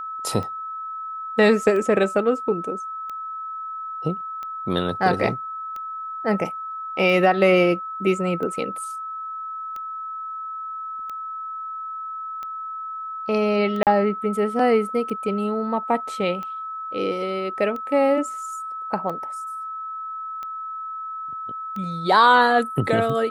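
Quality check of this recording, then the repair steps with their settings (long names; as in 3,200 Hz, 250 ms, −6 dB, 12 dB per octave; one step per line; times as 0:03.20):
scratch tick 45 rpm −21 dBFS
whistle 1,300 Hz −29 dBFS
0:13.83–0:13.87: drop-out 38 ms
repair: click removal
notch filter 1,300 Hz, Q 30
repair the gap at 0:13.83, 38 ms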